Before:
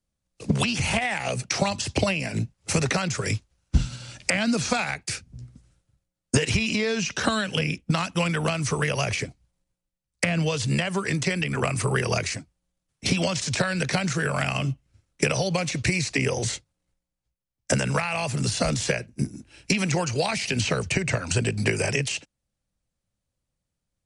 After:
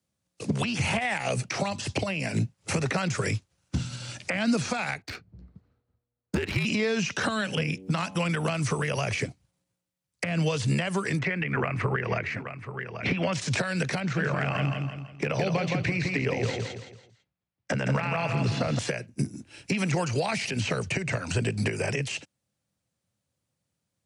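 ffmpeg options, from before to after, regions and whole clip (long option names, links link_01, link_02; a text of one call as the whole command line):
ffmpeg -i in.wav -filter_complex "[0:a]asettb=1/sr,asplit=3[link_01][link_02][link_03];[link_01]atrim=end=5.024[link_04];[link_02]atrim=start=5.02:end=6.65,asetpts=PTS-STARTPTS,afade=type=in:duration=0.004:curve=qsin,afade=type=out:start_time=1.626:duration=0.004:curve=qsin,equalizer=frequency=4300:width=5.9:gain=9,adynamicsmooth=sensitivity=1.5:basefreq=1400,afreqshift=-61[link_05];[link_03]atrim=start=6.646[link_06];[link_04][link_05]acrossfade=duration=0.004:curve1=hsin:curve2=qsin[link_07];[link_07][link_06]acrossfade=duration=0.004:curve1=qsin:curve2=hsin,asettb=1/sr,asplit=3[link_08][link_09][link_10];[link_08]atrim=end=7.374[link_11];[link_09]atrim=start=7.37:end=8.19,asetpts=PTS-STARTPTS,afade=type=in:duration=0.004:curve=qsin,afade=type=out:start_time=0.816:duration=0.004:curve=qsin,bandreject=frequency=94.47:width_type=h:width=4,bandreject=frequency=188.94:width_type=h:width=4,bandreject=frequency=283.41:width_type=h:width=4,bandreject=frequency=377.88:width_type=h:width=4,bandreject=frequency=472.35:width_type=h:width=4,bandreject=frequency=566.82:width_type=h:width=4,bandreject=frequency=661.29:width_type=h:width=4,bandreject=frequency=755.76:width_type=h:width=4,bandreject=frequency=850.23:width_type=h:width=4,bandreject=frequency=944.7:width_type=h:width=4,bandreject=frequency=1039.17:width_type=h:width=4,acompressor=mode=upward:threshold=-31dB:ratio=2.5:attack=3.2:release=140:knee=2.83:detection=peak[link_12];[link_10]atrim=start=8.186[link_13];[link_11][link_12]acrossfade=duration=0.004:curve1=hsin:curve2=qsin[link_14];[link_14][link_13]acrossfade=duration=0.004:curve1=qsin:curve2=hsin,asettb=1/sr,asplit=3[link_15][link_16][link_17];[link_15]atrim=end=11.194[link_18];[link_16]atrim=start=11.19:end=13.33,asetpts=PTS-STARTPTS,afade=type=in:duration=0.004:curve=qsin,afade=type=out:start_time=2.136:duration=0.004:curve=qsin,lowpass=frequency=2000:width_type=q:width=1.9,aecho=1:1:829:0.15,atrim=end_sample=94374[link_19];[link_17]atrim=start=13.326[link_20];[link_18][link_19]acrossfade=duration=0.004:curve1=hsin:curve2=qsin[link_21];[link_21][link_20]acrossfade=duration=0.004:curve1=qsin:curve2=hsin,asettb=1/sr,asplit=3[link_22][link_23][link_24];[link_22]atrim=end=14.004[link_25];[link_23]atrim=start=14:end=18.79,asetpts=PTS-STARTPTS,afade=type=in:duration=0.004:curve=qsin,afade=type=out:start_time=4.786:duration=0.004:curve=qsin,lowpass=3000,asoftclip=type=hard:threshold=-13.5dB,aecho=1:1:166|332|498|664:0.501|0.175|0.0614|0.0215,atrim=end_sample=211239[link_26];[link_24]atrim=start=18.786[link_27];[link_25][link_26]acrossfade=duration=0.004:curve1=hsin:curve2=qsin[link_28];[link_28][link_27]acrossfade=duration=0.004:curve1=qsin:curve2=hsin,highpass=frequency=86:width=0.5412,highpass=frequency=86:width=1.3066,acrossover=split=2800[link_29][link_30];[link_30]acompressor=threshold=-34dB:ratio=4:attack=1:release=60[link_31];[link_29][link_31]amix=inputs=2:normalize=0,alimiter=limit=-19.5dB:level=0:latency=1:release=350,volume=3dB" out.wav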